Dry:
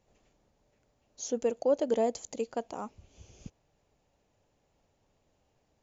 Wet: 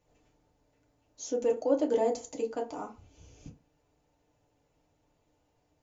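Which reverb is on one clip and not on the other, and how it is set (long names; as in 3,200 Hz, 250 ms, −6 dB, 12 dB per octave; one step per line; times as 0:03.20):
feedback delay network reverb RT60 0.32 s, low-frequency decay 1×, high-frequency decay 0.55×, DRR −0.5 dB
level −3.5 dB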